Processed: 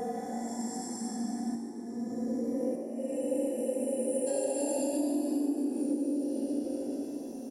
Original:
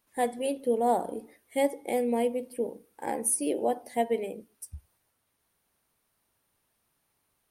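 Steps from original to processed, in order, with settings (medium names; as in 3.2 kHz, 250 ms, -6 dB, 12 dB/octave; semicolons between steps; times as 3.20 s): reverberation RT60 0.70 s, pre-delay 3 ms, DRR 19 dB; level rider; resonant high shelf 4.3 kHz +11 dB, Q 3; Paulstretch 25×, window 0.05 s, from 0.30 s; slow attack 728 ms; feedback comb 58 Hz, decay 1.1 s, harmonics all, mix 80%; compression 12:1, threshold -30 dBFS, peak gain reduction 14 dB; frequency-shifting echo 146 ms, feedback 61%, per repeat +50 Hz, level -11.5 dB; spectral replace 3.24–4.24 s, 420–8700 Hz before; trim +2.5 dB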